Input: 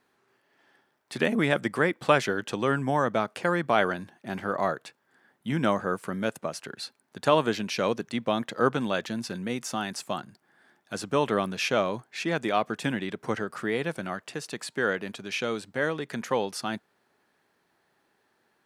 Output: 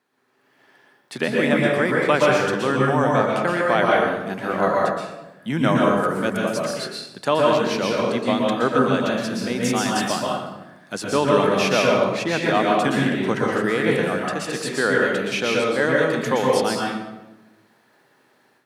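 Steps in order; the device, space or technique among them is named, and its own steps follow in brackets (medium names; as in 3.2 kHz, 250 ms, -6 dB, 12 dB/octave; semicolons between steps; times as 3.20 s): far laptop microphone (reverberation RT60 0.95 s, pre-delay 113 ms, DRR -2.5 dB; high-pass 130 Hz; level rider gain up to 9.5 dB); trim -3 dB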